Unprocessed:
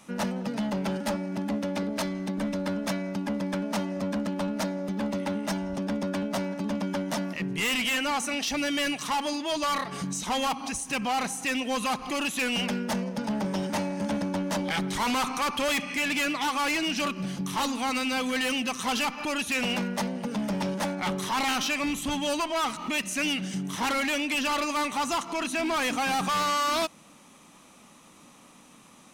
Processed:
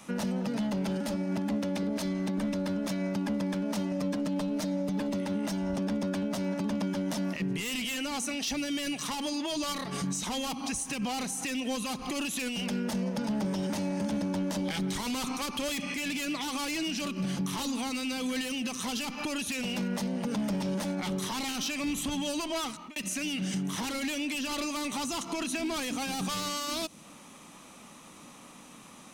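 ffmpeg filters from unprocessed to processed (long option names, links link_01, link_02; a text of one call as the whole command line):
ffmpeg -i in.wav -filter_complex "[0:a]asettb=1/sr,asplit=3[link_01][link_02][link_03];[link_01]atrim=end=3.914[link_04];[link_02]atrim=start=3.91:end=5.13,asetpts=PTS-STARTPTS,afade=type=in:duration=0.004:curve=qsin,afade=type=out:start_time=1.216:duration=0.004:curve=qsin,aecho=1:1:6.7:0.65,atrim=end_sample=53802[link_05];[link_03]atrim=start=5.126[link_06];[link_04][link_05]acrossfade=duration=0.004:curve1=hsin:curve2=qsin[link_07];[link_07][link_06]acrossfade=duration=0.004:curve1=qsin:curve2=hsin,asplit=2[link_08][link_09];[link_08]atrim=end=22.96,asetpts=PTS-STARTPTS,afade=type=out:start_time=22.48:duration=0.48[link_10];[link_09]atrim=start=22.96,asetpts=PTS-STARTPTS,afade=type=in:duration=0.004:curve=hsin[link_11];[link_10][link_11]concat=n=2:v=0:a=1,acrossover=split=480|3000[link_12][link_13][link_14];[link_13]acompressor=threshold=-39dB:ratio=6[link_15];[link_12][link_15][link_14]amix=inputs=3:normalize=0,alimiter=level_in=3dB:limit=-24dB:level=0:latency=1:release=77,volume=-3dB,volume=3dB" out.wav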